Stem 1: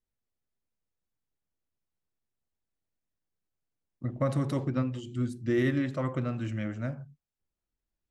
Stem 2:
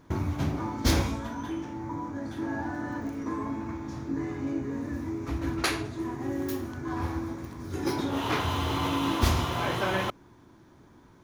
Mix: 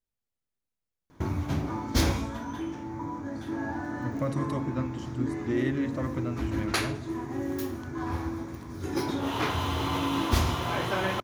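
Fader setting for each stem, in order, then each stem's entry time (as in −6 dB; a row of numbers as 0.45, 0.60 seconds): −2.5, −0.5 decibels; 0.00, 1.10 seconds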